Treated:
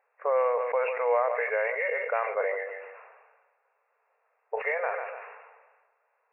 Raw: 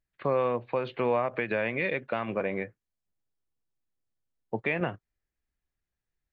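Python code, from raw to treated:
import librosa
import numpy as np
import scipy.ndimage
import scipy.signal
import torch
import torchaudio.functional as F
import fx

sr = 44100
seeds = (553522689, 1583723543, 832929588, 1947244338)

p1 = fx.freq_compress(x, sr, knee_hz=1700.0, ratio=1.5)
p2 = fx.echo_feedback(p1, sr, ms=146, feedback_pct=21, wet_db=-17.5)
p3 = fx.quant_dither(p2, sr, seeds[0], bits=8, dither='triangular')
p4 = p2 + F.gain(torch.from_numpy(p3), -12.0).numpy()
p5 = fx.env_lowpass(p4, sr, base_hz=1200.0, full_db=-24.5)
p6 = fx.brickwall_bandpass(p5, sr, low_hz=420.0, high_hz=2800.0)
y = fx.sustainer(p6, sr, db_per_s=41.0)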